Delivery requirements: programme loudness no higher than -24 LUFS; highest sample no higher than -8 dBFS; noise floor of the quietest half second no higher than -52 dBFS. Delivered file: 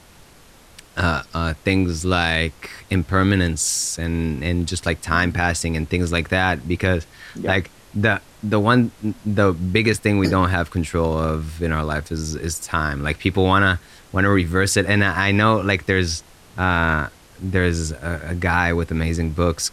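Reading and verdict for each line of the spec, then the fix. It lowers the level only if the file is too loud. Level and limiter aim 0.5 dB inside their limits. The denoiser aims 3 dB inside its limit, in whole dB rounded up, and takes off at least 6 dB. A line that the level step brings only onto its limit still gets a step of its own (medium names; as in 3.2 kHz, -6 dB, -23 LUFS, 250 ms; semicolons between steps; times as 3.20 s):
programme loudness -20.5 LUFS: fail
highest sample -4.0 dBFS: fail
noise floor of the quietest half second -48 dBFS: fail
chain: noise reduction 6 dB, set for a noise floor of -48 dBFS; trim -4 dB; peak limiter -8.5 dBFS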